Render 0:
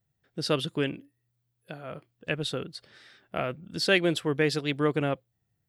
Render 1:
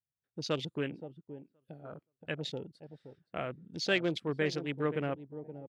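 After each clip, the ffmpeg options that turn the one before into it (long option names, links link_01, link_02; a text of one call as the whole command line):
ffmpeg -i in.wav -filter_complex "[0:a]asplit=2[link_01][link_02];[link_02]adelay=522,lowpass=frequency=1400:poles=1,volume=-11dB,asplit=2[link_03][link_04];[link_04]adelay=522,lowpass=frequency=1400:poles=1,volume=0.26,asplit=2[link_05][link_06];[link_06]adelay=522,lowpass=frequency=1400:poles=1,volume=0.26[link_07];[link_01][link_03][link_05][link_07]amix=inputs=4:normalize=0,afwtdn=0.0158,volume=-6.5dB" out.wav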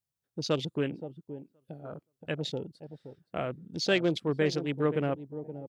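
ffmpeg -i in.wav -af "equalizer=frequency=2000:width=0.89:gain=-5,volume=5dB" out.wav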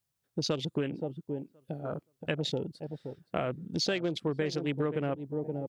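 ffmpeg -i in.wav -af "acompressor=threshold=-33dB:ratio=10,volume=6dB" out.wav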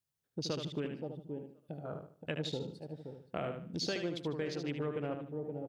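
ffmpeg -i in.wav -af "aecho=1:1:75|150|225|300:0.473|0.147|0.0455|0.0141,volume=-6.5dB" out.wav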